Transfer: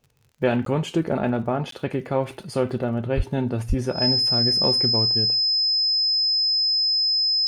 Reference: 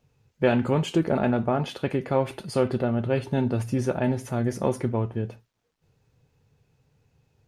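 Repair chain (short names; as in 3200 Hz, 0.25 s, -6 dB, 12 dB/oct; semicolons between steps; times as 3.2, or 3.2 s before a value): de-click; notch 5100 Hz, Q 30; 3.16–3.28 HPF 140 Hz 24 dB/oct; 3.68–3.8 HPF 140 Hz 24 dB/oct; interpolate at 0.65/1.71, 13 ms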